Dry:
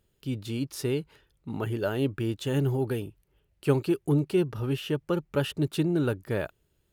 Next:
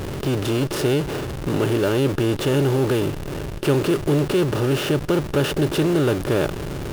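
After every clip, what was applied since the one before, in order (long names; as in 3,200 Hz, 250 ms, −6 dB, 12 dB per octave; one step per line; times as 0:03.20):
compressor on every frequency bin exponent 0.4
in parallel at −6 dB: comparator with hysteresis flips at −35.5 dBFS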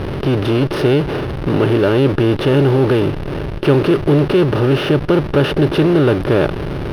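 moving average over 6 samples
level +6.5 dB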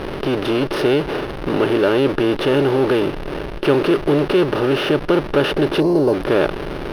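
gain on a spectral selection 0:05.80–0:06.14, 1,100–4,000 Hz −16 dB
parametric band 100 Hz −13.5 dB 1.7 octaves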